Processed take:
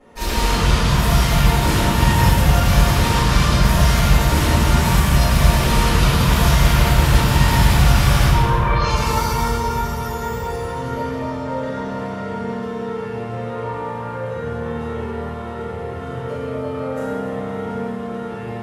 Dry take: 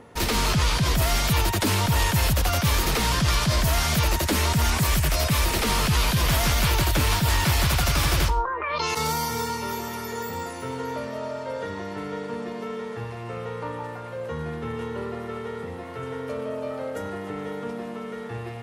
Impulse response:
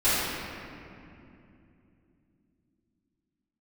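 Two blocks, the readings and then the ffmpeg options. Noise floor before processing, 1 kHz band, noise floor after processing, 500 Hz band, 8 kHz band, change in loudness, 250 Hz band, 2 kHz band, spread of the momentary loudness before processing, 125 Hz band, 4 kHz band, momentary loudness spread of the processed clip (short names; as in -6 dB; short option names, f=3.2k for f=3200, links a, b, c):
-35 dBFS, +6.5 dB, -28 dBFS, +6.0 dB, +1.0 dB, +6.0 dB, +8.0 dB, +4.5 dB, 12 LU, +8.5 dB, +2.5 dB, 12 LU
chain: -filter_complex "[1:a]atrim=start_sample=2205,asetrate=30429,aresample=44100[a];[0:a][a]afir=irnorm=-1:irlink=0,volume=-14dB"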